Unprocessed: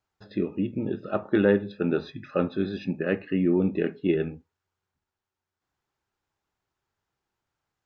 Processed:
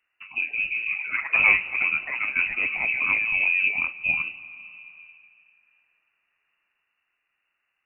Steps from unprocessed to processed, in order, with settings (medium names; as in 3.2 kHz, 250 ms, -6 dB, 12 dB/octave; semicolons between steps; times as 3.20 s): 0.78–1.30 s: peaking EQ 86 Hz -12 dB 0.81 oct; algorithmic reverb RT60 2.4 s, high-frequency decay 0.9×, pre-delay 110 ms, DRR 17 dB; ever faster or slower copies 224 ms, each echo +3 st, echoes 3; frequency inversion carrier 2.8 kHz; tape noise reduction on one side only encoder only; trim -1 dB